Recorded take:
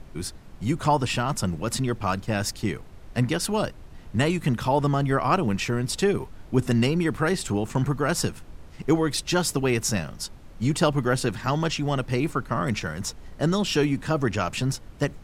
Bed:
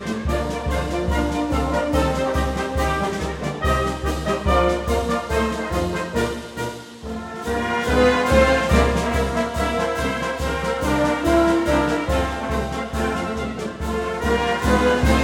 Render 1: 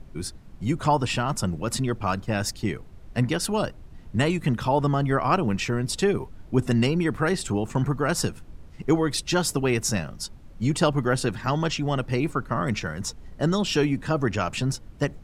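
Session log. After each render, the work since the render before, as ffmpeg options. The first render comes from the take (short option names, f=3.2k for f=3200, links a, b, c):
-af "afftdn=nr=6:nf=-45"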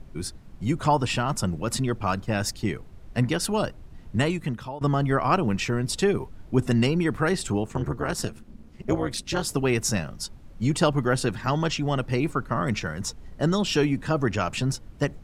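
-filter_complex "[0:a]asplit=3[a][b][c];[a]afade=t=out:st=7.62:d=0.02[d];[b]tremolo=f=220:d=0.857,afade=t=in:st=7.62:d=0.02,afade=t=out:st=9.5:d=0.02[e];[c]afade=t=in:st=9.5:d=0.02[f];[d][e][f]amix=inputs=3:normalize=0,asplit=2[g][h];[g]atrim=end=4.81,asetpts=PTS-STARTPTS,afade=t=out:st=4.16:d=0.65:silence=0.105925[i];[h]atrim=start=4.81,asetpts=PTS-STARTPTS,afade=t=in:d=0.004:c=hsin:silence=0.105925[j];[i][j]concat=n=2:v=0:a=1"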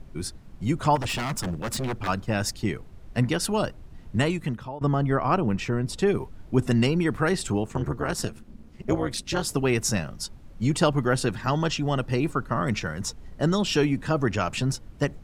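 -filter_complex "[0:a]asplit=3[a][b][c];[a]afade=t=out:st=0.95:d=0.02[d];[b]aeval=exprs='0.0708*(abs(mod(val(0)/0.0708+3,4)-2)-1)':c=same,afade=t=in:st=0.95:d=0.02,afade=t=out:st=2.07:d=0.02[e];[c]afade=t=in:st=2.07:d=0.02[f];[d][e][f]amix=inputs=3:normalize=0,asettb=1/sr,asplit=3[g][h][i];[g]atrim=end=4.574[j];[h]atrim=start=4.57:end=6.07,asetpts=PTS-STARTPTS,afade=t=in:d=0.004:c=qsin,afade=t=out:st=1.496:d=0.004:c=qsin,highshelf=f=2.1k:g=-7.5[k];[i]atrim=start=6.066[l];[j][k]acrossfade=d=0.004:c1=hsin:c2=qsin[m];[m][l]acrossfade=d=0.004:c1=qsin:c2=hsin,asettb=1/sr,asplit=3[n][o][p];[n]atrim=end=11.424[q];[o]atrim=start=11.42:end=12.54,asetpts=PTS-STARTPTS,afade=t=in:d=0.004:c=qsin,afade=t=out:st=1.116:d=0.004:c=qsin,bandreject=f=2.2k:w=12[r];[p]atrim=start=12.536[s];[q][r]acrossfade=d=0.004:c1=hsin:c2=qsin[t];[t][s]acrossfade=d=0.004:c1=qsin:c2=hsin"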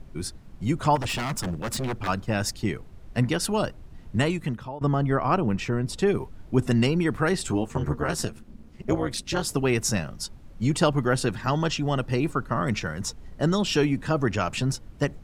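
-filter_complex "[0:a]asettb=1/sr,asplit=3[a][b][c];[a]atrim=end=7.464[d];[b]atrim=start=7.46:end=8.25,asetpts=PTS-STARTPTS,afade=t=in:d=0.004:c=qsin,afade=t=out:st=0.786:d=0.004:c=qsin,asplit=2[e][f];[f]adelay=13,volume=-6dB[g];[e][g]amix=inputs=2:normalize=0,atrim=end_sample=34839[h];[c]atrim=start=8.246[i];[d][h]acrossfade=d=0.004:c1=hsin:c2=qsin[j];[j][i]acrossfade=d=0.004:c1=qsin:c2=hsin"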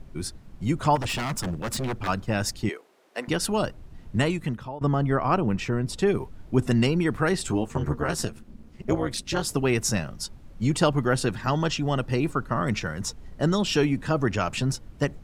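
-filter_complex "[0:a]asettb=1/sr,asplit=3[a][b][c];[a]atrim=end=2.694[d];[b]atrim=start=2.69:end=3.28,asetpts=PTS-STARTPTS,afade=t=in:d=0.004:c=qsin,afade=t=out:st=0.586:d=0.004:c=qsin,highpass=f=360:w=0.5412,highpass=f=360:w=1.3066[e];[c]atrim=start=3.276[f];[d][e]acrossfade=d=0.004:c1=hsin:c2=qsin[g];[g][f]acrossfade=d=0.004:c1=qsin:c2=hsin"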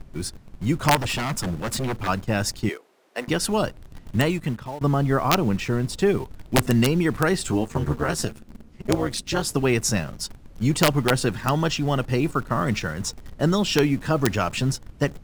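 -filter_complex "[0:a]asplit=2[a][b];[b]acrusher=bits=5:mix=0:aa=0.000001,volume=-10dB[c];[a][c]amix=inputs=2:normalize=0,aeval=exprs='(mod(2.66*val(0)+1,2)-1)/2.66':c=same"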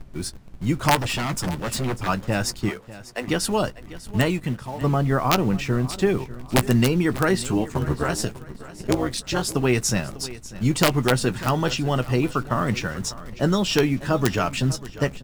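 -filter_complex "[0:a]asplit=2[a][b];[b]adelay=16,volume=-12.5dB[c];[a][c]amix=inputs=2:normalize=0,aecho=1:1:596|1192|1788:0.141|0.0494|0.0173"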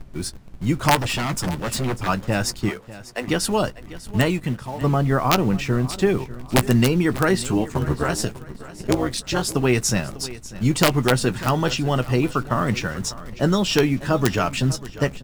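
-af "volume=1.5dB"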